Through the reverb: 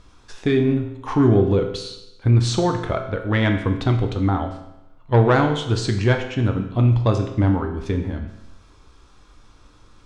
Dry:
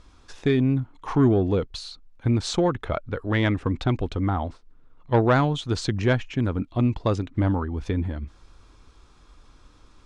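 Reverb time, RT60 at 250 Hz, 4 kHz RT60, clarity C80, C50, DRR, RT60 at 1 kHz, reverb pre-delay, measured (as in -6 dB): 0.90 s, 0.90 s, 0.85 s, 10.0 dB, 7.5 dB, 4.0 dB, 0.90 s, 8 ms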